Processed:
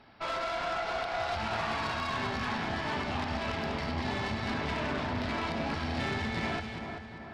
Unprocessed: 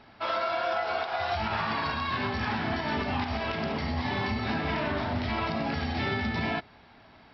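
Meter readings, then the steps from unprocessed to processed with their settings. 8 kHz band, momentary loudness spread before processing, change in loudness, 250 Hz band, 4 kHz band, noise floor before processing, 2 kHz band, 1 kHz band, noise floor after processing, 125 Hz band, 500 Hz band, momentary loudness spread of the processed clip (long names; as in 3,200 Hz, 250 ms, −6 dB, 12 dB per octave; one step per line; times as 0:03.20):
can't be measured, 2 LU, −3.0 dB, −3.5 dB, −2.0 dB, −55 dBFS, −2.5 dB, −3.0 dB, −45 dBFS, −3.5 dB, −3.0 dB, 2 LU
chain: tube saturation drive 28 dB, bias 0.65
echo with a time of its own for lows and highs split 1,900 Hz, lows 384 ms, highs 197 ms, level −6 dB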